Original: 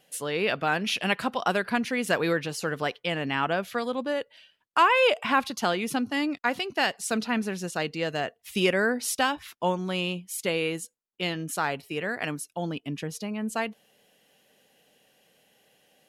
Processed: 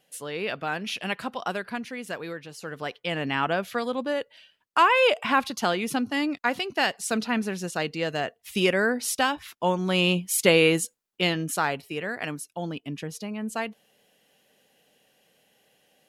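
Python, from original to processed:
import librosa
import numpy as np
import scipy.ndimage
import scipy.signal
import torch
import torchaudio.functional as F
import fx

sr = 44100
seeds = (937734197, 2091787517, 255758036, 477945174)

y = fx.gain(x, sr, db=fx.line((1.43, -4.0), (2.41, -11.0), (3.19, 1.0), (9.63, 1.0), (10.17, 9.0), (10.81, 9.0), (12.04, -1.0)))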